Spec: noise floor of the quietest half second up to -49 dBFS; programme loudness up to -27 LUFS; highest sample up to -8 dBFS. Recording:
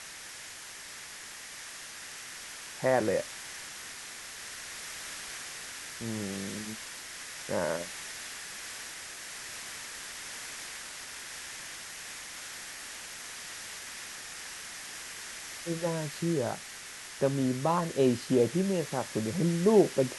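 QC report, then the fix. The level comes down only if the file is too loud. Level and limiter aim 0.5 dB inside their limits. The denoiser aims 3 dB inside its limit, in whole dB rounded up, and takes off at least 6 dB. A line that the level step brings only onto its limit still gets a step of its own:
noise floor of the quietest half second -45 dBFS: fail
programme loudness -34.0 LUFS: pass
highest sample -10.5 dBFS: pass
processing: noise reduction 7 dB, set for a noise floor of -45 dBFS

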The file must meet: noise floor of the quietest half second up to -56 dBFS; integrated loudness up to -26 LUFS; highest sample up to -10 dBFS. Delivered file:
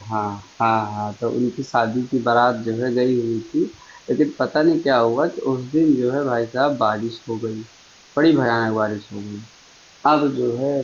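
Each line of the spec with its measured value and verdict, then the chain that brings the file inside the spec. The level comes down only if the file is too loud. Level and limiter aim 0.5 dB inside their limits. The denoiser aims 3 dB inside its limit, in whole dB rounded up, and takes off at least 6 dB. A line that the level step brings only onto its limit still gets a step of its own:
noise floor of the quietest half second -49 dBFS: fail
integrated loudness -20.5 LUFS: fail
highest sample -5.5 dBFS: fail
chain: noise reduction 6 dB, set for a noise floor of -49 dBFS; trim -6 dB

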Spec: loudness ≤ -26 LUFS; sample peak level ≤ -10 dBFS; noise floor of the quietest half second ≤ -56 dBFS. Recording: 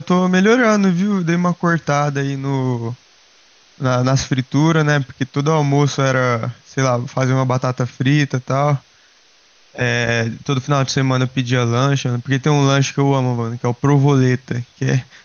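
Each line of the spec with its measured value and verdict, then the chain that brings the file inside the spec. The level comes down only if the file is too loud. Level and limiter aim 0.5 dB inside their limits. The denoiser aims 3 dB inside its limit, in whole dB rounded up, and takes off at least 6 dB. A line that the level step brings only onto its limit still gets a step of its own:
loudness -17.5 LUFS: fail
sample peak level -4.5 dBFS: fail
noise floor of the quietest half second -52 dBFS: fail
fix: trim -9 dB

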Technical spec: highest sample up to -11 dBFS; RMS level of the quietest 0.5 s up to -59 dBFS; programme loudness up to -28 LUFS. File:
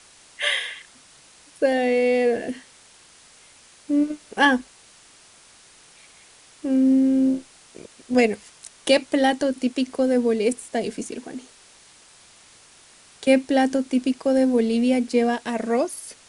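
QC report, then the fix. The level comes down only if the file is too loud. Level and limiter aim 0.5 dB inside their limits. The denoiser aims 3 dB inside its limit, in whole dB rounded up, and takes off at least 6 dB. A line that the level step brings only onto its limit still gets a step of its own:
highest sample -6.0 dBFS: fail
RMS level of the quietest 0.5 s -51 dBFS: fail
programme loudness -22.0 LUFS: fail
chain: noise reduction 6 dB, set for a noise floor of -51 dBFS; trim -6.5 dB

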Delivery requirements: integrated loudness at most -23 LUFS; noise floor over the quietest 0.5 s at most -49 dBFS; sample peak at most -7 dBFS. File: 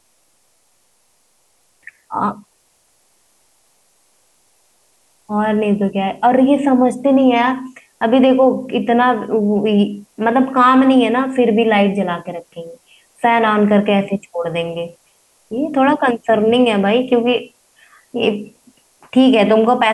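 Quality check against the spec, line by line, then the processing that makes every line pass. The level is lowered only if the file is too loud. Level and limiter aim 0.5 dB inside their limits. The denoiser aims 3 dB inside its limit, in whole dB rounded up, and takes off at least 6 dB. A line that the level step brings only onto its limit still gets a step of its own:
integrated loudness -15.0 LUFS: fail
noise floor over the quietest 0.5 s -59 dBFS: pass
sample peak -3.0 dBFS: fail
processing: trim -8.5 dB

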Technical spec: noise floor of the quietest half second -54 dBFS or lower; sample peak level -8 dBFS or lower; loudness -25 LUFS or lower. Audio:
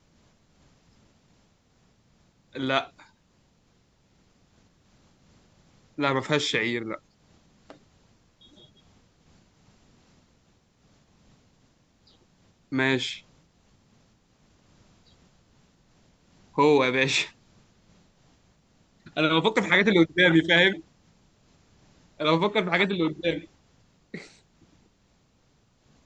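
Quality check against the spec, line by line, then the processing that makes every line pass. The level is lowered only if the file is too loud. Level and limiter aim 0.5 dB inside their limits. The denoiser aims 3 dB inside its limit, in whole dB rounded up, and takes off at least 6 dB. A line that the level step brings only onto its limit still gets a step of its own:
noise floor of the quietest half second -64 dBFS: pass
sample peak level -5.5 dBFS: fail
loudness -23.5 LUFS: fail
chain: trim -2 dB; peak limiter -8.5 dBFS

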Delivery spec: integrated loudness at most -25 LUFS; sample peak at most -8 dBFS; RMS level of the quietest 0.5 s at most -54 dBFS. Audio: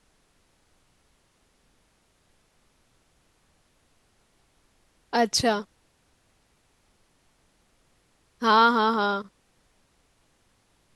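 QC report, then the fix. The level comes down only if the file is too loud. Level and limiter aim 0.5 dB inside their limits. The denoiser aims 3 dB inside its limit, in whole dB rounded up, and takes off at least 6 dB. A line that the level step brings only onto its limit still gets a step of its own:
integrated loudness -23.0 LUFS: fail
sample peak -7.0 dBFS: fail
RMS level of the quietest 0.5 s -66 dBFS: pass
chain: trim -2.5 dB

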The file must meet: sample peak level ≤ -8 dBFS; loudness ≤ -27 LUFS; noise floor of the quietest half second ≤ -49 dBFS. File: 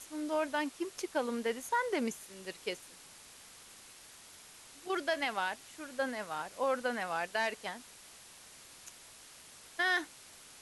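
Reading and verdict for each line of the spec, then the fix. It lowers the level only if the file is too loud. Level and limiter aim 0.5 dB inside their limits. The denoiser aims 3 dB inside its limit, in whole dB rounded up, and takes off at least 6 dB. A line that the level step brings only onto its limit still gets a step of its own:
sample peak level -20.0 dBFS: pass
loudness -35.5 LUFS: pass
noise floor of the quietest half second -55 dBFS: pass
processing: none needed

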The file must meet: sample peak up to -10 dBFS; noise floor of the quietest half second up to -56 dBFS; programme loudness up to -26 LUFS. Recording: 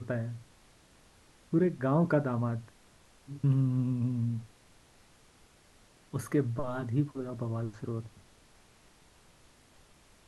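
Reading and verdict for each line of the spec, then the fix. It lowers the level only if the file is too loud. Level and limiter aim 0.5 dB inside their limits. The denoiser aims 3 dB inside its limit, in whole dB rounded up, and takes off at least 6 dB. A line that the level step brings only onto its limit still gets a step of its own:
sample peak -14.5 dBFS: pass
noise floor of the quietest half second -61 dBFS: pass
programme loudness -32.0 LUFS: pass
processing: none needed

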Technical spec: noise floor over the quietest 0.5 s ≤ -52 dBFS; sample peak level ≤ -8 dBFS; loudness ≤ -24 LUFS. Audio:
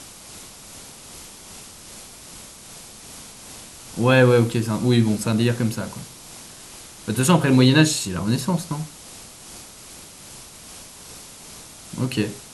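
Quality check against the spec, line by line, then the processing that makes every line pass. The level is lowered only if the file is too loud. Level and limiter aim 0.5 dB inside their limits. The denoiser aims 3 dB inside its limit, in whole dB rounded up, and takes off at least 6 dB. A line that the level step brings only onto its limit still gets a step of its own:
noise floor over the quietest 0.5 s -42 dBFS: fail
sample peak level -3.0 dBFS: fail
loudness -20.0 LUFS: fail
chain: noise reduction 9 dB, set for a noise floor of -42 dBFS; trim -4.5 dB; peak limiter -8.5 dBFS

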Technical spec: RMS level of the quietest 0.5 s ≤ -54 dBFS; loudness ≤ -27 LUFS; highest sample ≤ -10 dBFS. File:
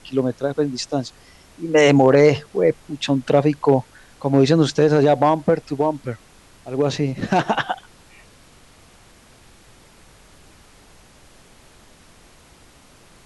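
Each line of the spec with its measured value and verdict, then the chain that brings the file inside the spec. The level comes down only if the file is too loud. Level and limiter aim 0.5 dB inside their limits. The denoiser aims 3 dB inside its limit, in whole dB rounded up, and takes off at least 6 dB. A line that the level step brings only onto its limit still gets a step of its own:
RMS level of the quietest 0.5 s -49 dBFS: fail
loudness -18.5 LUFS: fail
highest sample -3.0 dBFS: fail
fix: trim -9 dB

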